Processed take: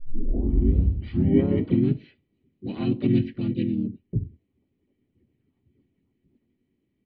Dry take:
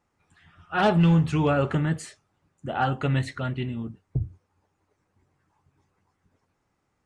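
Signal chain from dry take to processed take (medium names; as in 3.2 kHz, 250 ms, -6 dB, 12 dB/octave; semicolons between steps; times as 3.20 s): tape start-up on the opening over 2.01 s; cascade formant filter i; harmony voices -3 st 0 dB, +5 st -3 dB; trim +7 dB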